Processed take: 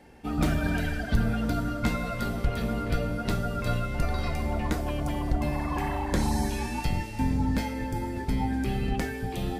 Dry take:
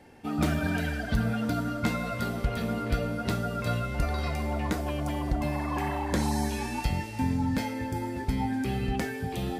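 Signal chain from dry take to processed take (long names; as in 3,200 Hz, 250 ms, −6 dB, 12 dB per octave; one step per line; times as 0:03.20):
sub-octave generator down 2 octaves, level −2 dB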